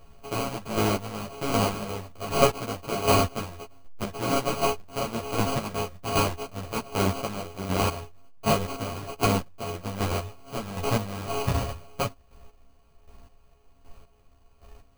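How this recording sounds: a buzz of ramps at a fixed pitch in blocks of 64 samples; chopped level 1.3 Hz, depth 65%, duty 25%; aliases and images of a low sample rate 1.8 kHz, jitter 0%; a shimmering, thickened sound

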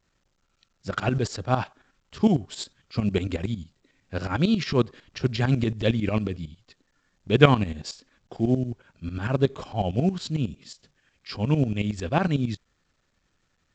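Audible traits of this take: tremolo saw up 11 Hz, depth 80%; A-law

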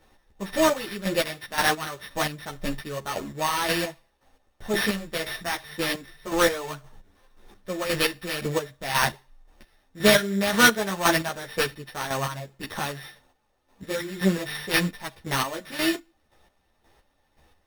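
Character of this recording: a buzz of ramps at a fixed pitch in blocks of 8 samples; chopped level 1.9 Hz, depth 65%, duty 30%; aliases and images of a low sample rate 7.3 kHz, jitter 0%; a shimmering, thickened sound

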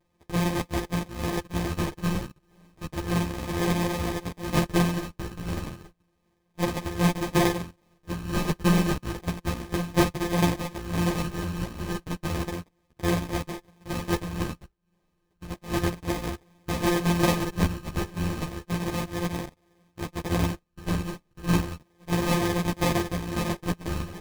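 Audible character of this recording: a buzz of ramps at a fixed pitch in blocks of 256 samples; phasing stages 6, 0.32 Hz, lowest notch 600–2200 Hz; aliases and images of a low sample rate 1.4 kHz, jitter 0%; a shimmering, thickened sound

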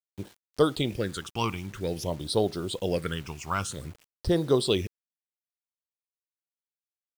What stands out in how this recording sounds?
phasing stages 8, 0.51 Hz, lowest notch 500–2400 Hz; a quantiser's noise floor 8-bit, dither none

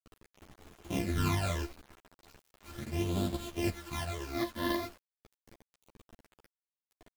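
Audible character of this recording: a buzz of ramps at a fixed pitch in blocks of 128 samples; phasing stages 12, 0.38 Hz, lowest notch 130–2000 Hz; a quantiser's noise floor 8-bit, dither none; a shimmering, thickened sound

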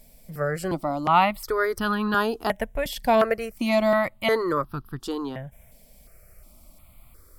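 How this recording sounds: notches that jump at a steady rate 2.8 Hz 340–2100 Hz

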